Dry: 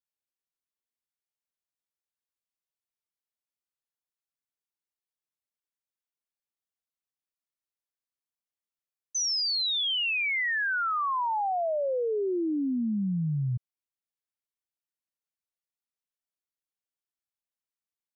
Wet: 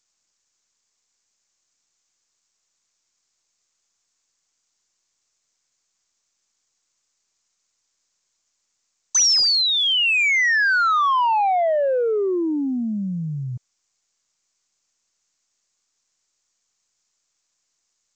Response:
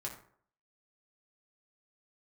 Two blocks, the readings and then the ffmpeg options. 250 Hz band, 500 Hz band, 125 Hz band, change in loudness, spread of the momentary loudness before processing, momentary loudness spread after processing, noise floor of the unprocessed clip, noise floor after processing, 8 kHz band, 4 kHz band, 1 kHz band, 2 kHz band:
+4.5 dB, +8.0 dB, +1.0 dB, +9.5 dB, 5 LU, 12 LU, below −85 dBFS, −75 dBFS, can't be measured, +9.5 dB, +9.5 dB, +10.0 dB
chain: -filter_complex "[0:a]aexciter=amount=13.8:drive=1.5:freq=5500,asplit=2[link_01][link_02];[link_02]highpass=frequency=720:poles=1,volume=22dB,asoftclip=type=tanh:threshold=-8dB[link_03];[link_01][link_03]amix=inputs=2:normalize=0,lowpass=frequency=5000:poles=1,volume=-6dB,volume=-2dB" -ar 16000 -c:a g722

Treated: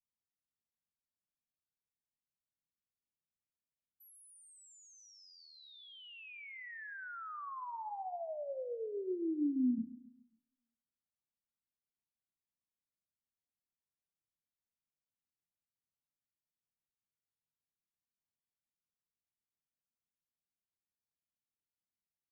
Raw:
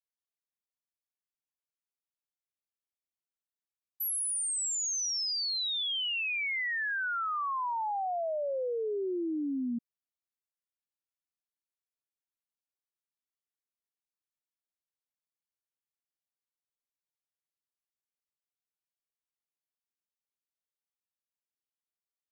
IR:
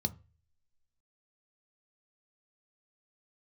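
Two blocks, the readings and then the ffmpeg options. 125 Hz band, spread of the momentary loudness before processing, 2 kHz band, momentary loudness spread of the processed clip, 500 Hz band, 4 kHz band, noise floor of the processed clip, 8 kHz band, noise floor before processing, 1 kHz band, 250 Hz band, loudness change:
can't be measured, 4 LU, −16.0 dB, 22 LU, −7.5 dB, −24.0 dB, below −85 dBFS, below −25 dB, below −85 dBFS, −11.0 dB, −0.5 dB, −9.0 dB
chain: -filter_complex "[0:a]firequalizer=gain_entry='entry(220,0);entry(410,-10);entry(4300,-30)':delay=0.05:min_phase=1,aecho=1:1:136|272|408|544:0.158|0.0682|0.0293|0.0126,asplit=2[link_01][link_02];[1:a]atrim=start_sample=2205,adelay=26[link_03];[link_02][link_03]afir=irnorm=-1:irlink=0,volume=-13.5dB[link_04];[link_01][link_04]amix=inputs=2:normalize=0,volume=1.5dB"

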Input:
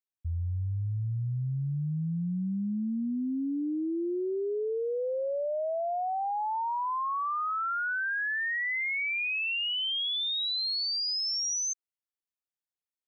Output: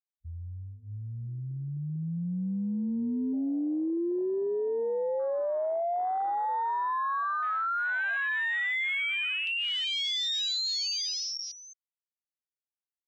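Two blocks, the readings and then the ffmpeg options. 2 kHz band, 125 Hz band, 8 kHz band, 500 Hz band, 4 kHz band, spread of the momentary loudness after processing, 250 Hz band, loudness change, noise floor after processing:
+1.0 dB, −4.5 dB, can't be measured, +1.5 dB, 0.0 dB, 11 LU, +0.5 dB, +0.5 dB, below −85 dBFS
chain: -af "afwtdn=0.0282,bandreject=frequency=50:width_type=h:width=6,bandreject=frequency=100:width_type=h:width=6,dynaudnorm=framelen=820:gausssize=5:maxgain=9.5dB,volume=-8dB"

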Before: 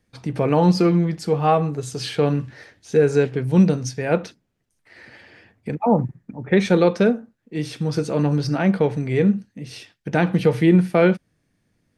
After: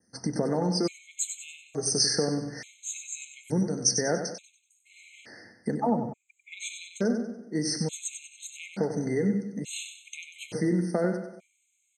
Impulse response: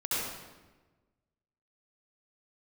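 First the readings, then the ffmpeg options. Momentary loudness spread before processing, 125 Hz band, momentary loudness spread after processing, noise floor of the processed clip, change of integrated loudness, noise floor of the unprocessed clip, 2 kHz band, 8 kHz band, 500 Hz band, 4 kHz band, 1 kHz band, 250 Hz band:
14 LU, −13.0 dB, 16 LU, −73 dBFS, −9.5 dB, −70 dBFS, −10.0 dB, +10.0 dB, −11.5 dB, +1.5 dB, −12.0 dB, −10.5 dB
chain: -filter_complex "[0:a]acompressor=threshold=-24dB:ratio=6,aexciter=amount=10.8:drive=2.4:freq=5700,highpass=130,equalizer=frequency=130:width_type=q:width=4:gain=-6,equalizer=frequency=230:width_type=q:width=4:gain=4,equalizer=frequency=1100:width_type=q:width=4:gain=-7,lowpass=frequency=7500:width=0.5412,lowpass=frequency=7500:width=1.3066,aecho=1:1:95|190|285|380|475:0.398|0.163|0.0669|0.0274|0.0112,asplit=2[link_01][link_02];[1:a]atrim=start_sample=2205[link_03];[link_02][link_03]afir=irnorm=-1:irlink=0,volume=-24.5dB[link_04];[link_01][link_04]amix=inputs=2:normalize=0,adynamicequalizer=threshold=0.01:dfrequency=3800:dqfactor=1.4:tfrequency=3800:tqfactor=1.4:attack=5:release=100:ratio=0.375:range=2:mode=boostabove:tftype=bell,afftfilt=real='re*gt(sin(2*PI*0.57*pts/sr)*(1-2*mod(floor(b*sr/1024/2100),2)),0)':imag='im*gt(sin(2*PI*0.57*pts/sr)*(1-2*mod(floor(b*sr/1024/2100),2)),0)':win_size=1024:overlap=0.75"

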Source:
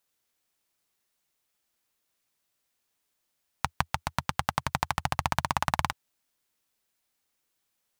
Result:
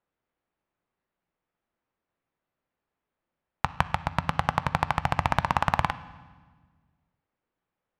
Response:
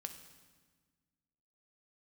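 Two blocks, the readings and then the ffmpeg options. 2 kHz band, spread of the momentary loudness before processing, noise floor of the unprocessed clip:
+2.5 dB, 7 LU, −79 dBFS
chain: -filter_complex "[0:a]equalizer=frequency=9800:width=1.9:gain=-8.5,adynamicsmooth=sensitivity=1:basefreq=1800,asplit=2[link_01][link_02];[1:a]atrim=start_sample=2205,lowpass=3900[link_03];[link_02][link_03]afir=irnorm=-1:irlink=0,volume=1.5dB[link_04];[link_01][link_04]amix=inputs=2:normalize=0,volume=-1dB"

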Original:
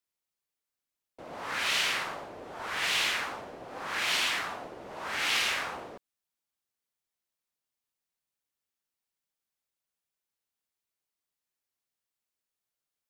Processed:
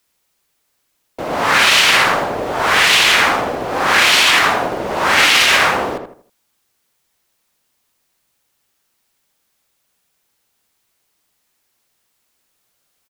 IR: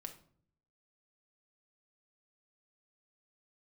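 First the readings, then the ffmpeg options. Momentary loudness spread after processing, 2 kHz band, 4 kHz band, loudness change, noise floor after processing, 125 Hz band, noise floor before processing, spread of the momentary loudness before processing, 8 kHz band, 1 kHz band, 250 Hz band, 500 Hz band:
12 LU, +18.5 dB, +17.5 dB, +17.5 dB, −68 dBFS, +21.5 dB, below −85 dBFS, 17 LU, +17.0 dB, +20.5 dB, +21.0 dB, +21.5 dB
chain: -filter_complex "[0:a]acrusher=bits=7:mode=log:mix=0:aa=0.000001,asplit=2[link_01][link_02];[link_02]adelay=80,lowpass=frequency=2000:poles=1,volume=-6dB,asplit=2[link_03][link_04];[link_04]adelay=80,lowpass=frequency=2000:poles=1,volume=0.35,asplit=2[link_05][link_06];[link_06]adelay=80,lowpass=frequency=2000:poles=1,volume=0.35,asplit=2[link_07][link_08];[link_08]adelay=80,lowpass=frequency=2000:poles=1,volume=0.35[link_09];[link_01][link_03][link_05][link_07][link_09]amix=inputs=5:normalize=0,alimiter=level_in=22.5dB:limit=-1dB:release=50:level=0:latency=1,volume=-1dB"

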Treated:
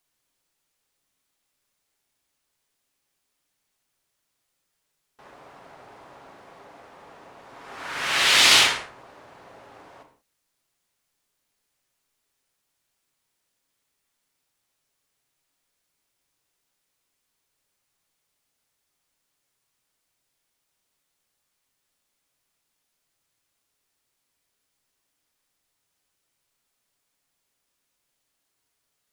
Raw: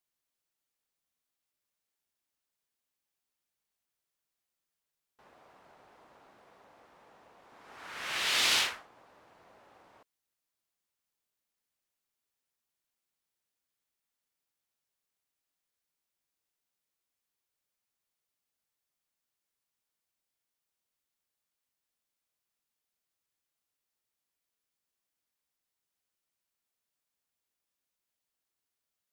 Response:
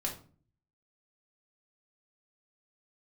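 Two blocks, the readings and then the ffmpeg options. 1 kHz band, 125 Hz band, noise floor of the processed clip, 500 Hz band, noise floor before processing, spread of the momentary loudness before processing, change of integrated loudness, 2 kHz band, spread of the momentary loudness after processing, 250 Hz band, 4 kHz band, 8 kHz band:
+12.0 dB, +14.0 dB, −78 dBFS, +12.0 dB, below −85 dBFS, 20 LU, +11.0 dB, +11.5 dB, 18 LU, +12.0 dB, +11.5 dB, +11.5 dB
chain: -filter_complex "[0:a]asplit=2[link_01][link_02];[1:a]atrim=start_sample=2205,atrim=end_sample=4410,asetrate=22491,aresample=44100[link_03];[link_02][link_03]afir=irnorm=-1:irlink=0,volume=-5.5dB[link_04];[link_01][link_04]amix=inputs=2:normalize=0,volume=6dB"

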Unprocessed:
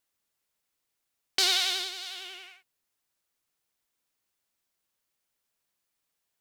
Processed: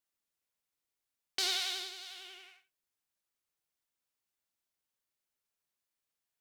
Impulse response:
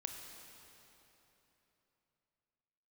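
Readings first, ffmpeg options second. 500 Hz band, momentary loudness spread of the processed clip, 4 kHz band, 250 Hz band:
−7.5 dB, 19 LU, −8.0 dB, can't be measured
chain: -filter_complex "[1:a]atrim=start_sample=2205,atrim=end_sample=3969[link_01];[0:a][link_01]afir=irnorm=-1:irlink=0,volume=-5dB"

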